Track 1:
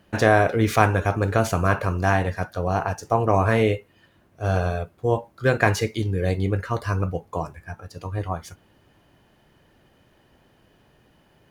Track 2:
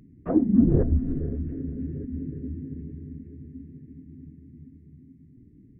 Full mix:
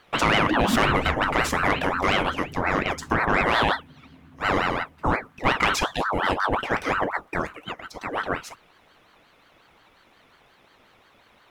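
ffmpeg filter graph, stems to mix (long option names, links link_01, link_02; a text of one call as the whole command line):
ffmpeg -i stem1.wav -i stem2.wav -filter_complex "[0:a]equalizer=frequency=2300:width=0.46:gain=8,bandreject=frequency=3900:width=6.4,aeval=exprs='val(0)*sin(2*PI*910*n/s+910*0.6/5.6*sin(2*PI*5.6*n/s))':channel_layout=same,volume=1.5dB[link_01];[1:a]adelay=150,volume=-6dB[link_02];[link_01][link_02]amix=inputs=2:normalize=0,asoftclip=type=tanh:threshold=-6.5dB,alimiter=limit=-10.5dB:level=0:latency=1:release=59" out.wav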